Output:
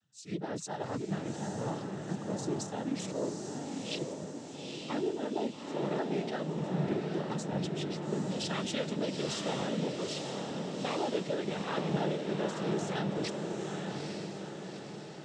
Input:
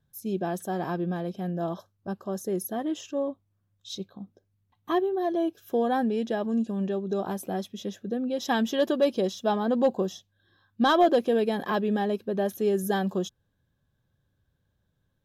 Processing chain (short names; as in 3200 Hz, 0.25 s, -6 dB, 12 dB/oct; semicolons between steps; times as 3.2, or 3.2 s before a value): repeated pitch sweeps -5 st, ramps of 0.332 s; high shelf 2100 Hz +10.5 dB; limiter -21 dBFS, peak gain reduction 11 dB; noise vocoder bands 12; on a send: diffused feedback echo 0.86 s, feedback 55%, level -3 dB; on the sum: gain -5.5 dB